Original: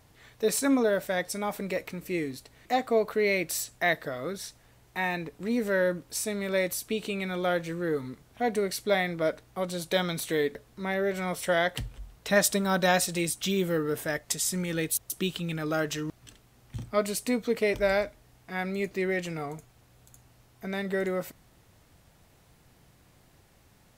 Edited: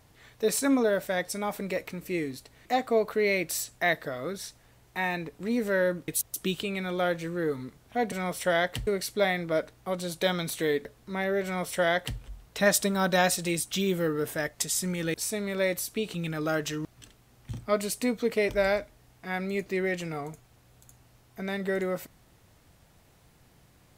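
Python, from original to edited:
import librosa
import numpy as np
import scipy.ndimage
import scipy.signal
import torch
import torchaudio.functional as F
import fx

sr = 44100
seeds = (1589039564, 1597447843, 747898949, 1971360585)

y = fx.edit(x, sr, fx.swap(start_s=6.08, length_s=1.0, other_s=14.84, other_length_s=0.55),
    fx.duplicate(start_s=11.14, length_s=0.75, to_s=8.57), tone=tone)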